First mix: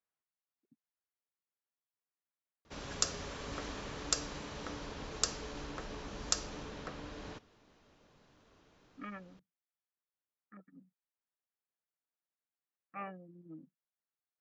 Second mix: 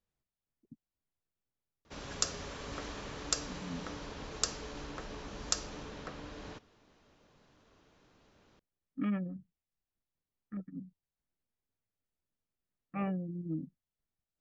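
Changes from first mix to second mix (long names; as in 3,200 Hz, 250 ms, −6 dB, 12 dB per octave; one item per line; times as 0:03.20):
speech: remove resonant band-pass 1,400 Hz, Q 0.91
background: entry −0.80 s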